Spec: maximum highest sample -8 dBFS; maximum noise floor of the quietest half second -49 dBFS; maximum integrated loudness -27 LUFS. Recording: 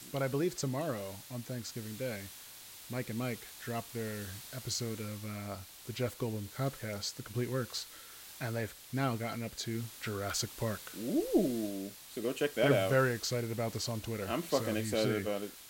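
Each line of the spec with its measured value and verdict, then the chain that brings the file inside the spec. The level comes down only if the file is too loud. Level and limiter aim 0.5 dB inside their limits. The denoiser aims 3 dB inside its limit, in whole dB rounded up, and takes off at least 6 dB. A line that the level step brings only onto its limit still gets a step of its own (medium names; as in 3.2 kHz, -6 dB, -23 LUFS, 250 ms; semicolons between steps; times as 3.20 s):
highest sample -15.0 dBFS: pass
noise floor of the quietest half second -51 dBFS: pass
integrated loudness -35.5 LUFS: pass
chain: none needed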